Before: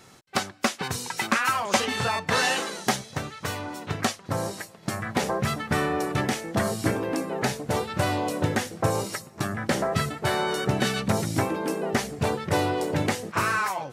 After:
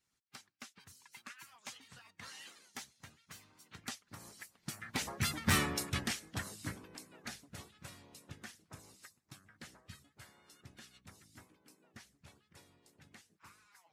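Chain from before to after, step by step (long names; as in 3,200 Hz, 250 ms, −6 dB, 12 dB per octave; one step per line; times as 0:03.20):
source passing by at 0:05.57, 14 m/s, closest 1.9 metres
parametric band 520 Hz −14.5 dB 2.1 octaves
harmonic and percussive parts rebalanced harmonic −16 dB
hard clipping −31 dBFS, distortion −11 dB
saturating transformer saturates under 120 Hz
level +9.5 dB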